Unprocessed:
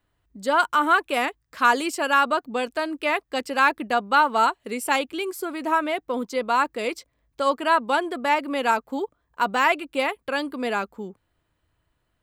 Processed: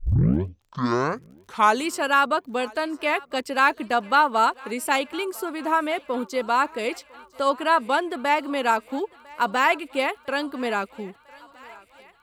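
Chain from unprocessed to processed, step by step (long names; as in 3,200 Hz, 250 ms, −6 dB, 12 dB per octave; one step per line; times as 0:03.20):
turntable start at the beginning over 1.89 s
surface crackle 34 per second −46 dBFS
feedback echo with a high-pass in the loop 1,002 ms, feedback 73%, high-pass 380 Hz, level −23 dB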